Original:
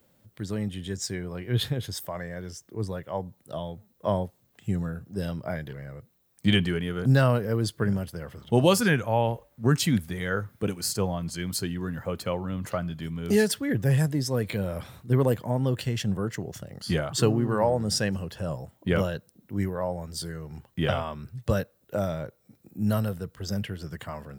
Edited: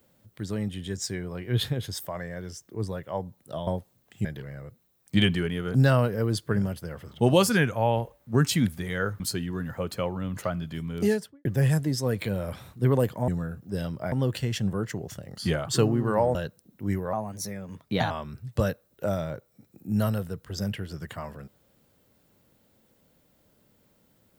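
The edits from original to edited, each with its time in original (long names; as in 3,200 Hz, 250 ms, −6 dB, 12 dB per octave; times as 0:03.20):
0:03.67–0:04.14: remove
0:04.72–0:05.56: move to 0:15.56
0:10.51–0:11.48: remove
0:13.21–0:13.73: fade out and dull
0:17.79–0:19.05: remove
0:19.83–0:21.01: play speed 121%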